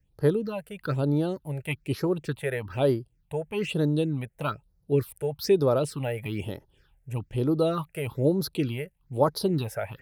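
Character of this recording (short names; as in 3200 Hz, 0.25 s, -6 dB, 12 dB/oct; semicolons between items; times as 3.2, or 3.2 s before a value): phasing stages 6, 1.1 Hz, lowest notch 280–2700 Hz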